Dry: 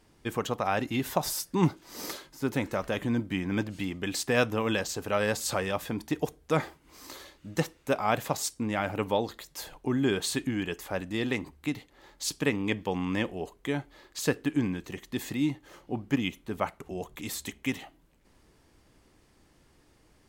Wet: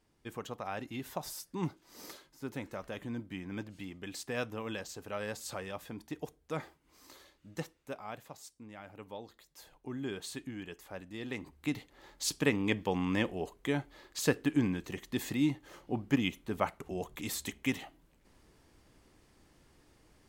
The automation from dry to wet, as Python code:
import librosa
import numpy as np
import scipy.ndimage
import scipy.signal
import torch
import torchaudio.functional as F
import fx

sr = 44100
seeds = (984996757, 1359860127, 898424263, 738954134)

y = fx.gain(x, sr, db=fx.line((7.63, -11.0), (8.3, -19.5), (8.86, -19.5), (10.01, -12.0), (11.19, -12.0), (11.75, -1.5)))